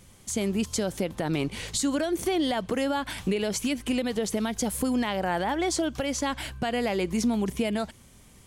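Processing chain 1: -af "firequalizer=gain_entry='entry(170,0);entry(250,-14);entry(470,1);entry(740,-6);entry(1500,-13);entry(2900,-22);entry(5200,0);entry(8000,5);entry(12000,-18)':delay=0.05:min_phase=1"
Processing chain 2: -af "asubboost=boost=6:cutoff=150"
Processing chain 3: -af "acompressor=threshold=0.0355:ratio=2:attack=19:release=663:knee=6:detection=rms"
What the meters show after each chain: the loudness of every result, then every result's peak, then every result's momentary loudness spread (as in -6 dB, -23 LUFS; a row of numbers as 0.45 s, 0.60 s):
-32.0 LUFS, -27.0 LUFS, -32.0 LUFS; -15.0 dBFS, -12.5 dBFS, -19.0 dBFS; 4 LU, 5 LU, 3 LU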